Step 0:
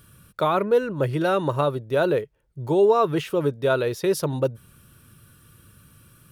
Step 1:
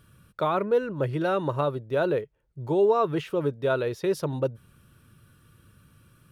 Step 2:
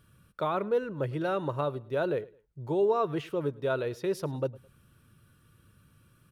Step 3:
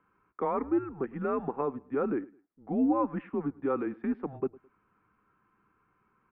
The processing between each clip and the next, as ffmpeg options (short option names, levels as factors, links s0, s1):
-af "highshelf=f=5800:g=-9.5,volume=0.668"
-af "aecho=1:1:106|212:0.075|0.0225,volume=0.596"
-af "highpass=f=310:t=q:w=0.5412,highpass=f=310:t=q:w=1.307,lowpass=f=2200:t=q:w=0.5176,lowpass=f=2200:t=q:w=0.7071,lowpass=f=2200:t=q:w=1.932,afreqshift=-140"